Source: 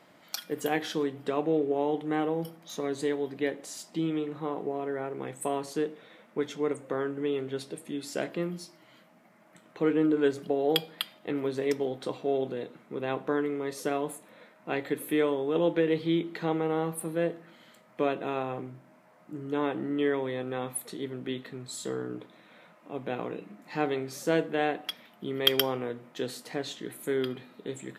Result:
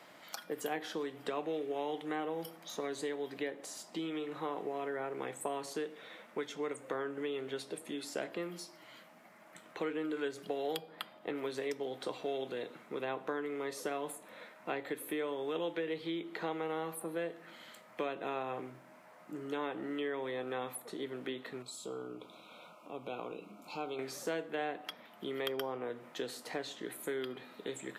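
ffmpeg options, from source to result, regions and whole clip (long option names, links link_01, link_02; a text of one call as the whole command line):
ffmpeg -i in.wav -filter_complex "[0:a]asettb=1/sr,asplit=3[link_01][link_02][link_03];[link_01]atrim=end=21.624[link_04];[link_02]atrim=start=21.62:end=23.99,asetpts=PTS-STARTPTS,afade=type=in:duration=0.004:curve=qsin,afade=type=out:start_time=2.366:duration=0.004:curve=qsin,asuperstop=centerf=1800:order=12:qfactor=2.4,acompressor=threshold=-49dB:ratio=1.5:attack=3.2:release=140:knee=1:detection=peak[link_05];[link_03]atrim=start=23.986[link_06];[link_04][link_05]acrossfade=duration=0.004:curve1=hsin:curve2=qsin[link_07];[link_07][link_06]acrossfade=duration=0.004:curve1=qsin:curve2=hsin,acrossover=split=250|1400[link_08][link_09][link_10];[link_08]acompressor=threshold=-50dB:ratio=4[link_11];[link_09]acompressor=threshold=-37dB:ratio=4[link_12];[link_10]acompressor=threshold=-50dB:ratio=4[link_13];[link_11][link_12][link_13]amix=inputs=3:normalize=0,lowshelf=frequency=360:gain=-10,volume=4dB" out.wav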